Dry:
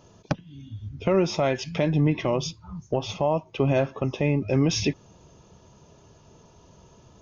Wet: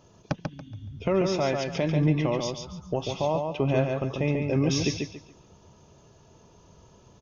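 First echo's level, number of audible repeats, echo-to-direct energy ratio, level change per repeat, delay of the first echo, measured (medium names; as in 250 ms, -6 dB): -4.5 dB, 3, -4.0 dB, -11.5 dB, 141 ms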